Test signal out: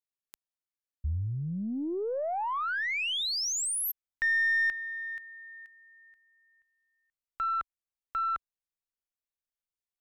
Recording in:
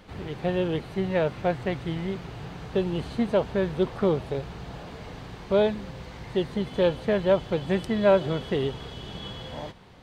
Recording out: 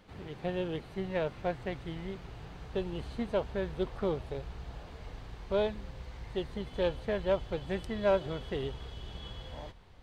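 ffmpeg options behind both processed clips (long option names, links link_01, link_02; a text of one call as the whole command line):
ffmpeg -i in.wav -af "asubboost=boost=5.5:cutoff=68,aeval=exprs='0.355*(cos(1*acos(clip(val(0)/0.355,-1,1)))-cos(1*PI/2))+0.00398*(cos(6*acos(clip(val(0)/0.355,-1,1)))-cos(6*PI/2))+0.00794*(cos(7*acos(clip(val(0)/0.355,-1,1)))-cos(7*PI/2))':channel_layout=same,volume=-7dB" out.wav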